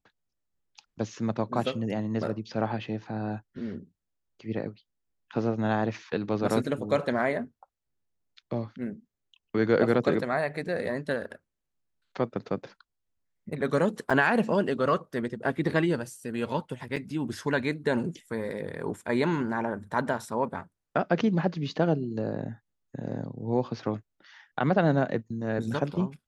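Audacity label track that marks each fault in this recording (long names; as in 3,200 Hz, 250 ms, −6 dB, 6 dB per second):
14.100000	14.110000	drop-out 5.4 ms
16.960000	16.970000	drop-out 5.1 ms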